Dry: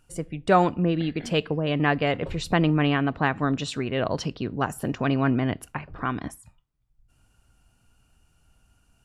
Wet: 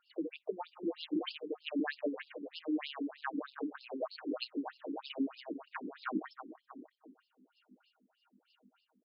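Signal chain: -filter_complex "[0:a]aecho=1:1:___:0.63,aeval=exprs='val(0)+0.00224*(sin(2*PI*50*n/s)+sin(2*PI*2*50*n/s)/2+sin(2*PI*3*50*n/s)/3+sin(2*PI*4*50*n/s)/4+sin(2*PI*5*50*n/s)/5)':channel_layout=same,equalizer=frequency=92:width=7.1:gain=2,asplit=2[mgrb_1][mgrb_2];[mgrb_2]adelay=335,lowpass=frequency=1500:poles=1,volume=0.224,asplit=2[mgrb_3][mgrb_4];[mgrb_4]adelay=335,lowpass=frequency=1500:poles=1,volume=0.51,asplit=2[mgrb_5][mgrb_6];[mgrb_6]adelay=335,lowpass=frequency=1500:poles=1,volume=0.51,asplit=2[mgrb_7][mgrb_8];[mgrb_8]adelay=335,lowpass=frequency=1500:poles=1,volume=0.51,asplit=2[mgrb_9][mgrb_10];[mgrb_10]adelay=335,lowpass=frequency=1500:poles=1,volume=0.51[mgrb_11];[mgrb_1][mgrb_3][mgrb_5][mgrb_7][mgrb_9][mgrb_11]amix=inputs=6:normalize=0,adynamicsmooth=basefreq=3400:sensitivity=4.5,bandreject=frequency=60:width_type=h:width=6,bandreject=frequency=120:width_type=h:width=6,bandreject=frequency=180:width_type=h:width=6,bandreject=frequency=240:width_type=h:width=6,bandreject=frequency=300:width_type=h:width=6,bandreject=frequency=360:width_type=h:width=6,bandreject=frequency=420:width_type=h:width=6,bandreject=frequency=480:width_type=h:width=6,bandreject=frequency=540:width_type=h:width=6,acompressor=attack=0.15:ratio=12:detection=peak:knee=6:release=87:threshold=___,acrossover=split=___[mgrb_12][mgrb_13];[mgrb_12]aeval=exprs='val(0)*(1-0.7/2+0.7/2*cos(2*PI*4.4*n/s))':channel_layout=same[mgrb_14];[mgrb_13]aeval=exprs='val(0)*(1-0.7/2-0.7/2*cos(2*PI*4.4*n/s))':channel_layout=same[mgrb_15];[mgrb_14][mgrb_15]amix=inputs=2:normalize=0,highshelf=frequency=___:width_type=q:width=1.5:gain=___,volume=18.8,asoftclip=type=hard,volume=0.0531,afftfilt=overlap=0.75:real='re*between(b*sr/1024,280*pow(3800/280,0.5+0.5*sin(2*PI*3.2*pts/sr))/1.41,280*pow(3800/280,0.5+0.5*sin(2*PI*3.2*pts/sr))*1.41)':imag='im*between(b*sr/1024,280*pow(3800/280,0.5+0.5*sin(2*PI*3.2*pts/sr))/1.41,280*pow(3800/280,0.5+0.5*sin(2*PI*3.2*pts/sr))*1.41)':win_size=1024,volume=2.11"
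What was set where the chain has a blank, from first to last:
6.4, 0.0447, 740, 3500, 13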